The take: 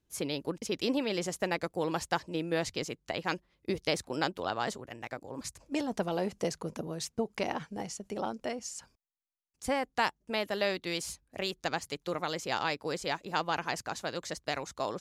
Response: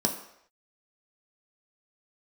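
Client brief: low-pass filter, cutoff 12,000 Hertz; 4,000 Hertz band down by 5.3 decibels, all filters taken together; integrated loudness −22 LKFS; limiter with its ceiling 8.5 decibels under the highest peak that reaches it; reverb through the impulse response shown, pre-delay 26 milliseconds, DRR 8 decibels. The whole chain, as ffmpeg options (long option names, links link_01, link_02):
-filter_complex "[0:a]lowpass=12000,equalizer=frequency=4000:width_type=o:gain=-7,alimiter=limit=-24dB:level=0:latency=1,asplit=2[link_01][link_02];[1:a]atrim=start_sample=2205,adelay=26[link_03];[link_02][link_03]afir=irnorm=-1:irlink=0,volume=-16.5dB[link_04];[link_01][link_04]amix=inputs=2:normalize=0,volume=13.5dB"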